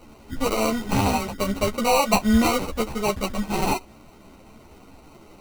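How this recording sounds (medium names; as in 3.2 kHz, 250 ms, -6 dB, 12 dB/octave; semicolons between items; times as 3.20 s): aliases and images of a low sample rate 1.7 kHz, jitter 0%; a shimmering, thickened sound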